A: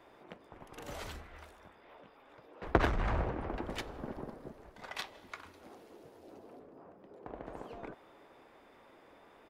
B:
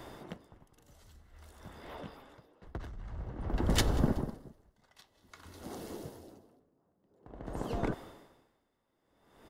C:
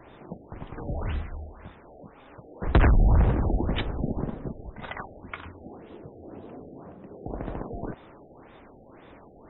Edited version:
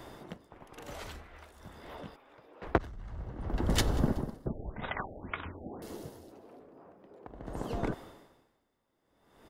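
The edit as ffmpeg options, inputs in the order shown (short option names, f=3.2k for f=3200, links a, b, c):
-filter_complex "[0:a]asplit=3[a][b][c];[1:a]asplit=5[d][e][f][g][h];[d]atrim=end=0.512[i];[a]atrim=start=0.508:end=1.522[j];[e]atrim=start=1.518:end=2.162[k];[b]atrim=start=2.158:end=2.782[l];[f]atrim=start=2.778:end=4.462[m];[2:a]atrim=start=4.458:end=5.822[n];[g]atrim=start=5.818:end=6.322[o];[c]atrim=start=6.318:end=7.272[p];[h]atrim=start=7.268[q];[i][j]acrossfade=d=0.004:c1=hsin:c2=hsin[r];[r][k]acrossfade=d=0.004:c1=hsin:c2=hsin[s];[s][l]acrossfade=d=0.004:c1=hsin:c2=hsin[t];[t][m]acrossfade=d=0.004:c1=hsin:c2=hsin[u];[u][n]acrossfade=d=0.004:c1=hsin:c2=hsin[v];[v][o]acrossfade=d=0.004:c1=hsin:c2=hsin[w];[w][p]acrossfade=d=0.004:c1=hsin:c2=hsin[x];[x][q]acrossfade=d=0.004:c1=hsin:c2=hsin"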